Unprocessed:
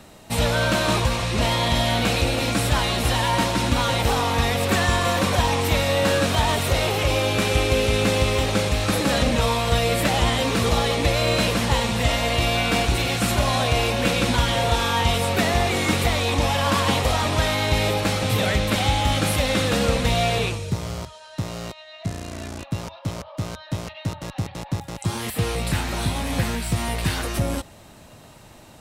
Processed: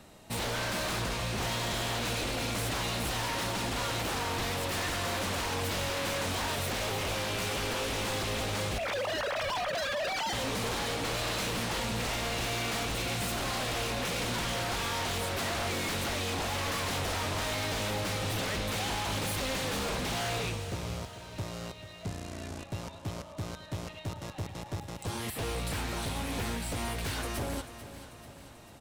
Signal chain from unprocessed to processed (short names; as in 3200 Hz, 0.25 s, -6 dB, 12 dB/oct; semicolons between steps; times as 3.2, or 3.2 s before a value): 8.78–10.33 sine-wave speech; wavefolder -20.5 dBFS; feedback echo 0.44 s, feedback 56%, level -13 dB; gain -7.5 dB